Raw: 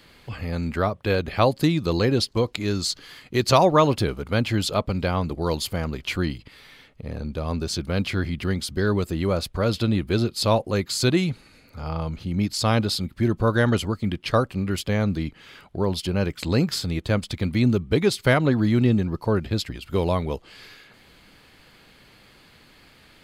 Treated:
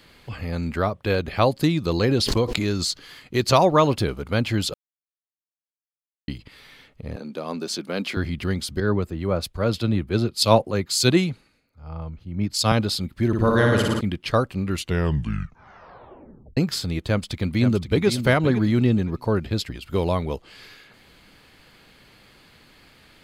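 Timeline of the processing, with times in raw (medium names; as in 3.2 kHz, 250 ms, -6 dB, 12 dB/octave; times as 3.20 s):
2.03–2.91 s: swell ahead of each attack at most 22 dB/s
4.74–6.28 s: mute
7.16–8.17 s: high-pass 200 Hz 24 dB/octave
8.80–12.72 s: three bands expanded up and down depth 100%
13.27–14.01 s: flutter echo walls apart 9.8 m, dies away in 1.2 s
14.65 s: tape stop 1.92 s
17.07–18.06 s: echo throw 520 ms, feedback 20%, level -8.5 dB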